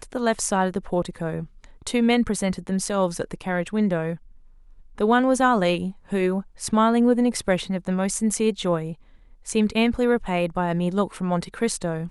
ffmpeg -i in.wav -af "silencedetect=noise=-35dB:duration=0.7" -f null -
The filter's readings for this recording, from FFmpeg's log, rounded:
silence_start: 4.16
silence_end: 4.98 | silence_duration: 0.83